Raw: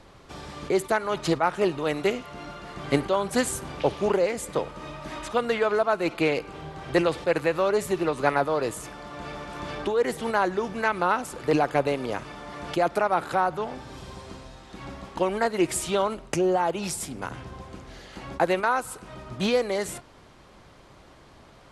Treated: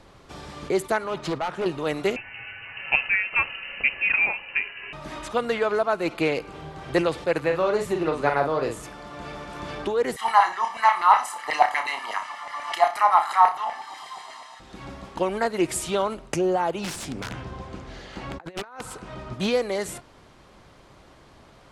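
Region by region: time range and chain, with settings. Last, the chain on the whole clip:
1.04–1.66 s: high-pass 64 Hz + overload inside the chain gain 22.5 dB + treble shelf 6.1 kHz -10 dB
2.16–4.93 s: frequency inversion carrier 2.9 kHz + dynamic bell 740 Hz, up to +3 dB, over -39 dBFS, Q 0.74
7.39–8.83 s: treble shelf 7.3 kHz -10.5 dB + doubling 44 ms -5.5 dB
10.16–14.60 s: comb 1 ms, depth 77% + LFO high-pass saw down 8.2 Hz 650–2000 Hz + flutter echo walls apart 5.3 m, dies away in 0.26 s
16.84–19.34 s: compressor with a negative ratio -31 dBFS, ratio -0.5 + integer overflow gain 23 dB + distance through air 53 m
whole clip: none

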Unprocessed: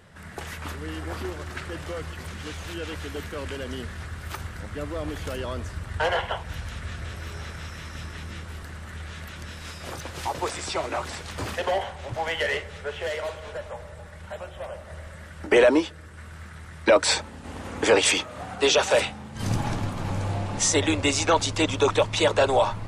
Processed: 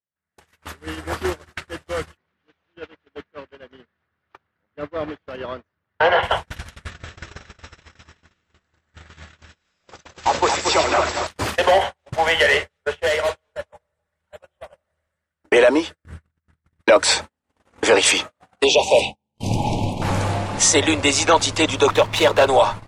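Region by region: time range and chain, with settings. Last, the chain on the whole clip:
2.17–6.23 s: high-pass 130 Hz + distance through air 250 m
6.90–11.27 s: brick-wall FIR low-pass 8 kHz + two-band feedback delay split 1.4 kHz, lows 229 ms, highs 100 ms, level -5.5 dB
16.04–16.81 s: compressor with a negative ratio -45 dBFS, ratio -0.5 + tone controls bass +13 dB, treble -4 dB
18.64–20.02 s: Chebyshev band-stop 910–2500 Hz, order 3 + treble shelf 6.1 kHz -10.5 dB
21.87–22.48 s: distance through air 54 m + sliding maximum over 3 samples
whole clip: gate -31 dBFS, range -44 dB; bass shelf 240 Hz -7 dB; level rider gain up to 15 dB; trim -2.5 dB

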